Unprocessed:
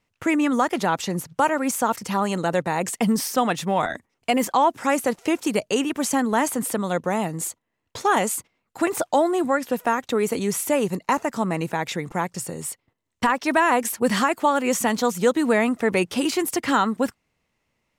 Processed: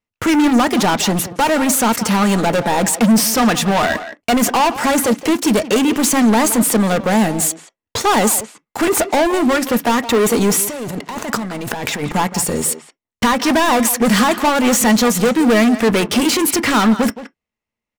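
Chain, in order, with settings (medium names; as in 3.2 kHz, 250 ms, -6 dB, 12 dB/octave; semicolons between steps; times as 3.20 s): waveshaping leveller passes 5; 10.64–12.03 s: compressor with a negative ratio -21 dBFS, ratio -1; speakerphone echo 170 ms, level -10 dB; on a send at -12 dB: reverberation, pre-delay 3 ms; on the sum: trim -3 dB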